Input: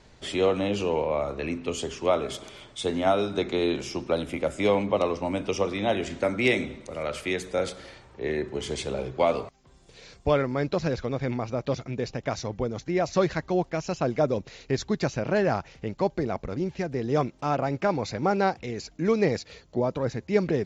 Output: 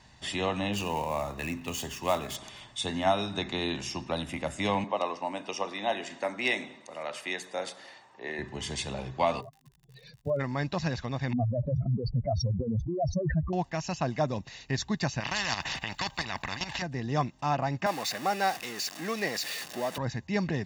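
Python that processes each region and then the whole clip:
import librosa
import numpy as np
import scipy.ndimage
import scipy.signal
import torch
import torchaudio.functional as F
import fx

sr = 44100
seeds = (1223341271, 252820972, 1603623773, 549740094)

y = fx.chain(x, sr, fx.dead_time(dead_ms=0.056),
    fx.peak_eq(hz=7000.0, db=4.5, octaves=0.31), at=(0.73, 2.36))
y = fx.chain(y, sr, fx.highpass(hz=430.0, slope=12),
    fx.tilt_shelf(db=4.0, hz=870.0), at=(4.84, 8.39))
y = fx.spec_expand(y, sr, power=2.9, at=(9.4, 10.39), fade=0.02)
y = fx.low_shelf_res(y, sr, hz=100.0, db=-8.0, q=3.0, at=(9.4, 10.39), fade=0.02)
y = fx.dmg_crackle(y, sr, seeds[0], per_s=66.0, level_db=-47.0, at=(9.4, 10.39), fade=0.02)
y = fx.chain(y, sr, fx.spec_expand(power=4.0),
    fx.spacing_loss(db_at_10k=33),
    fx.env_flatten(amount_pct=70), at=(11.33, 13.53))
y = fx.chain(y, sr, fx.peak_eq(hz=6000.0, db=-6.5, octaves=0.85),
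    fx.level_steps(step_db=13),
    fx.spectral_comp(ratio=4.0), at=(15.2, 16.82))
y = fx.chain(y, sr, fx.zero_step(step_db=-31.0),
    fx.highpass(hz=360.0, slope=12),
    fx.peak_eq(hz=930.0, db=-11.0, octaves=0.2), at=(17.86, 19.98))
y = fx.highpass(y, sr, hz=110.0, slope=6)
y = fx.peak_eq(y, sr, hz=400.0, db=-5.5, octaves=1.9)
y = y + 0.52 * np.pad(y, (int(1.1 * sr / 1000.0), 0))[:len(y)]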